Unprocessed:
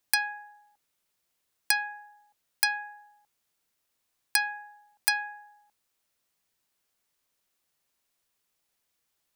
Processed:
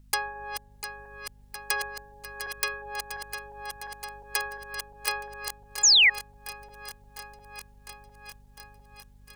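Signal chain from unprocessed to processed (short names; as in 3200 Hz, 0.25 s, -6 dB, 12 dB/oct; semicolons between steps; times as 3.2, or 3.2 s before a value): regenerating reverse delay 0.352 s, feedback 81%, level -9 dB; in parallel at -1.5 dB: compressor 8:1, threshold -40 dBFS, peak gain reduction 20 dB; on the sum: hum 50 Hz, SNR 17 dB; harmoniser -12 st -4 dB, -7 st -8 dB; painted sound fall, 5.83–6.1, 1800–7400 Hz -11 dBFS; gain -6 dB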